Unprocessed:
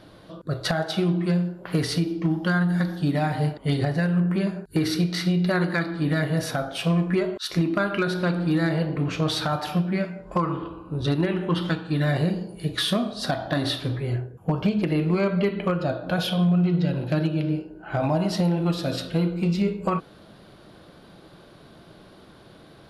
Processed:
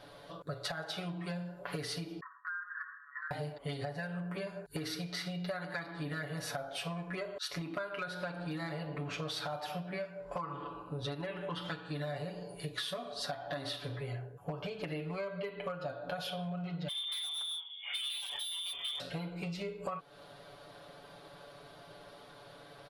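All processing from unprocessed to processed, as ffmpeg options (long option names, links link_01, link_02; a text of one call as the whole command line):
ffmpeg -i in.wav -filter_complex "[0:a]asettb=1/sr,asplit=3[link_01][link_02][link_03];[link_01]atrim=end=2.204[link_04];[link_02]atrim=start=2.2:end=3.31,asetpts=PTS-STARTPTS,afade=type=in:duration=0.004:curve=qsin,afade=type=out:start_time=1.106:duration=0.004:curve=qsin,asuperpass=centerf=1400:order=20:qfactor=1.6,acompressor=threshold=-35dB:ratio=3:attack=3.2:release=140:knee=1:detection=peak[link_05];[link_03]atrim=start=3.306[link_06];[link_04][link_05]acrossfade=duration=0.004:curve1=hsin:curve2=qsin[link_07];[link_07][link_06]acrossfade=duration=0.004:curve1=qsin:curve2=hsin,asettb=1/sr,asplit=3[link_08][link_09][link_10];[link_08]atrim=end=16.884[link_11];[link_09]atrim=start=16.88:end=19,asetpts=PTS-STARTPTS,afade=type=in:duration=0.004:curve=qsin,afade=type=out:start_time=2.116:duration=0.004:curve=qsin,lowpass=frequency=3100:width_type=q:width=0.5098,lowpass=frequency=3100:width_type=q:width=0.6013,lowpass=frequency=3100:width_type=q:width=0.9,lowpass=frequency=3100:width_type=q:width=2.563,afreqshift=-3700,asoftclip=type=hard:threshold=-25dB[link_12];[link_10]atrim=start=18.996[link_13];[link_11][link_12]acrossfade=duration=0.004:curve1=hsin:curve2=qsin[link_14];[link_14][link_13]acrossfade=duration=0.004:curve1=qsin:curve2=hsin,lowshelf=frequency=410:width_type=q:width=1.5:gain=-7.5,aecho=1:1:7:0.9,acompressor=threshold=-32dB:ratio=6,volume=-4.5dB" out.wav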